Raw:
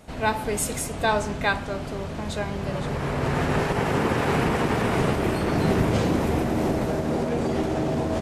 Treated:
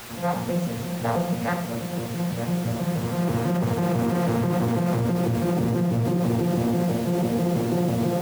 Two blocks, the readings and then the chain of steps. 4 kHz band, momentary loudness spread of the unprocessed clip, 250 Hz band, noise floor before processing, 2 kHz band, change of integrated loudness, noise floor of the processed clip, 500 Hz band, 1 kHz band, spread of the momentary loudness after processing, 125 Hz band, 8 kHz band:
−4.5 dB, 6 LU, +2.5 dB, −33 dBFS, −8.0 dB, 0.0 dB, −31 dBFS, −1.5 dB, −3.5 dB, 5 LU, +3.0 dB, −5.0 dB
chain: vocoder with an arpeggio as carrier bare fifth, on A#2, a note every 164 ms
on a send: feedback echo with a low-pass in the loop 90 ms, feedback 42%, low-pass 1,600 Hz, level −9.5 dB
on the sum: bit-depth reduction 6 bits, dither triangular
flanger 1.9 Hz, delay 8.7 ms, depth 7 ms, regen −55%
high-shelf EQ 3,500 Hz −11 dB
in parallel at +1 dB: compressor whose output falls as the input rises −29 dBFS, ratio −0.5

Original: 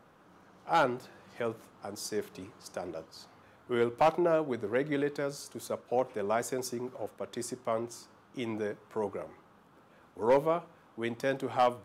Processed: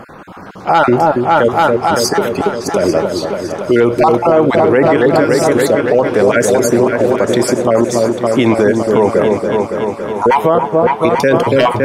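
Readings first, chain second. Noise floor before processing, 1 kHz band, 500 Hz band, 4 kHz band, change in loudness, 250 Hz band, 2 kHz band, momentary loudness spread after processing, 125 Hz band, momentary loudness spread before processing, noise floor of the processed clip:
−61 dBFS, +19.5 dB, +21.0 dB, +20.5 dB, +20.5 dB, +22.5 dB, +21.0 dB, 6 LU, +23.5 dB, 17 LU, −30 dBFS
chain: time-frequency cells dropped at random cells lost 30%
high-shelf EQ 4,700 Hz −6.5 dB
echo whose low-pass opens from repeat to repeat 281 ms, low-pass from 750 Hz, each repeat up 2 octaves, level −6 dB
boost into a limiter +28 dB
level −1 dB

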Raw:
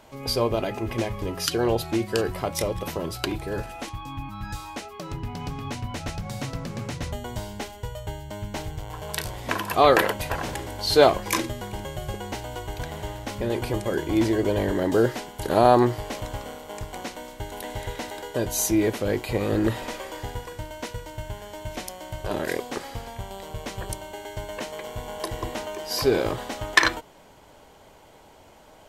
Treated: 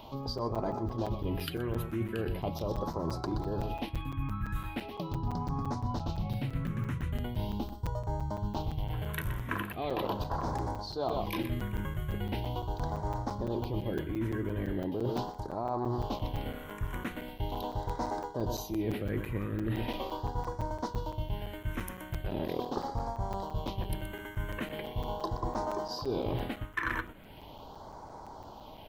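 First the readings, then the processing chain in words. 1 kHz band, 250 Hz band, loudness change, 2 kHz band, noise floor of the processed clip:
−8.5 dB, −7.0 dB, −8.5 dB, −12.0 dB, −48 dBFS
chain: octave-band graphic EQ 500/1,000/2,000/8,000 Hz −5/+8/−7/−12 dB
single-tap delay 124 ms −12 dB
gain on a spectral selection 0:07.60–0:07.87, 370–7,800 Hz −9 dB
in parallel at −12 dB: soft clipping −19 dBFS, distortion −8 dB
on the sum: all-pass phaser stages 4, 0.4 Hz, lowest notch 760–2,800 Hz
high-shelf EQ 4,500 Hz −4.5 dB
reversed playback
downward compressor 20 to 1, threshold −31 dBFS, peak gain reduction 21 dB
reversed playback
regular buffer underruns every 0.17 s, samples 256, zero, from 0:00.38
one half of a high-frequency compander encoder only
level +2 dB

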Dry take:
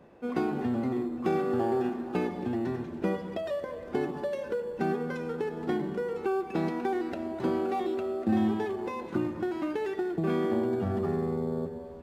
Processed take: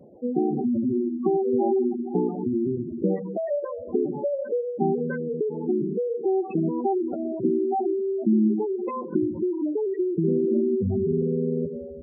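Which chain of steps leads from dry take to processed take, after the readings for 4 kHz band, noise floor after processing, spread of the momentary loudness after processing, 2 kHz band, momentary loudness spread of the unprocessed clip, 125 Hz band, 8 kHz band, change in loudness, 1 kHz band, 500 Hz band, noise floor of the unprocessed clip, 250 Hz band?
below −35 dB, −36 dBFS, 6 LU, −7.0 dB, 6 LU, +4.5 dB, can't be measured, +5.5 dB, +2.0 dB, +6.0 dB, −42 dBFS, +6.0 dB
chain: gate on every frequency bin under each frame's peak −10 dB strong
pitch vibrato 0.9 Hz 15 cents
level +6.5 dB

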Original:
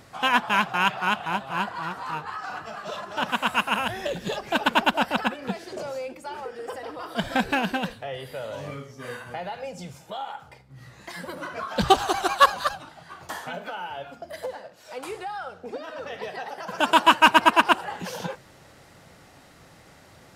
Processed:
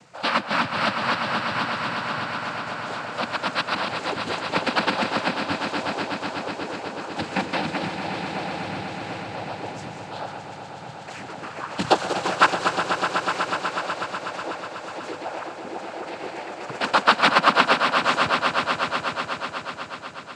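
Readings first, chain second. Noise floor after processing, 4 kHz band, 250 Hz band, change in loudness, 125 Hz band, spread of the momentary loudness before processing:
−38 dBFS, +1.5 dB, +1.0 dB, +0.5 dB, +3.0 dB, 18 LU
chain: cochlear-implant simulation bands 8
echo that builds up and dies away 123 ms, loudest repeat 5, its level −10 dB
level −1 dB

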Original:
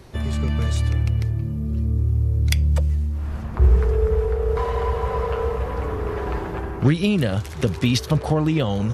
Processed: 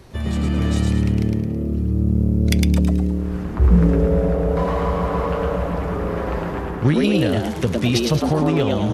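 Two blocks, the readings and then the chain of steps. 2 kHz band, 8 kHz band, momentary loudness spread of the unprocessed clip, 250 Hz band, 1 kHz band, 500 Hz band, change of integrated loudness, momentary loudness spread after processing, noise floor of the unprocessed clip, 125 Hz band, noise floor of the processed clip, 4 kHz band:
+2.0 dB, +2.0 dB, 7 LU, +6.0 dB, +2.5 dB, +3.0 dB, +2.5 dB, 7 LU, −32 dBFS, +1.0 dB, −27 dBFS, +2.0 dB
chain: echo with shifted repeats 108 ms, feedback 40%, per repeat +110 Hz, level −3 dB

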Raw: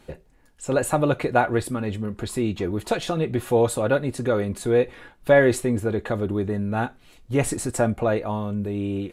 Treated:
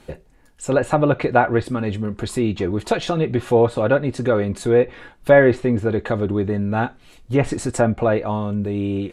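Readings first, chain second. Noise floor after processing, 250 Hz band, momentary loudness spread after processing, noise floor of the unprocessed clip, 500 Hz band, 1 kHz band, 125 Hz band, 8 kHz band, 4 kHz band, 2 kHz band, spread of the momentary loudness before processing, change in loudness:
−52 dBFS, +4.0 dB, 8 LU, −56 dBFS, +4.0 dB, +4.0 dB, +4.0 dB, −3.0 dB, +2.0 dB, +3.5 dB, 8 LU, +4.0 dB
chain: treble cut that deepens with the level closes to 2,500 Hz, closed at −16 dBFS
level +4 dB

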